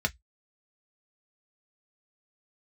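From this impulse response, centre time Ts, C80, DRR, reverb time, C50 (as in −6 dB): 4 ms, 45.5 dB, 3.5 dB, 0.10 s, 30.0 dB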